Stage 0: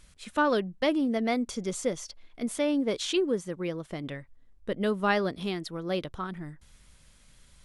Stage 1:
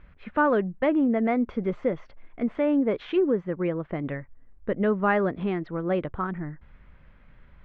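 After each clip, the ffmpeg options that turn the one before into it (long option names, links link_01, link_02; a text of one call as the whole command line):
ffmpeg -i in.wav -filter_complex "[0:a]asplit=2[link_01][link_02];[link_02]alimiter=limit=-24dB:level=0:latency=1:release=109,volume=0dB[link_03];[link_01][link_03]amix=inputs=2:normalize=0,lowpass=frequency=2100:width=0.5412,lowpass=frequency=2100:width=1.3066" out.wav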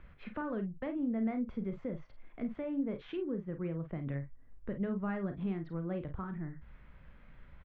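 ffmpeg -i in.wav -filter_complex "[0:a]acrossover=split=190[link_01][link_02];[link_02]acompressor=threshold=-48dB:ratio=2[link_03];[link_01][link_03]amix=inputs=2:normalize=0,aecho=1:1:36|50:0.316|0.282,volume=-3dB" out.wav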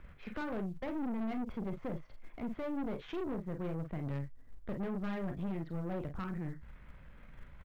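ffmpeg -i in.wav -filter_complex "[0:a]asplit=2[link_01][link_02];[link_02]acrusher=bits=5:mode=log:mix=0:aa=0.000001,volume=-10dB[link_03];[link_01][link_03]amix=inputs=2:normalize=0,aeval=exprs='(tanh(70.8*val(0)+0.55)-tanh(0.55))/70.8':channel_layout=same,volume=2.5dB" out.wav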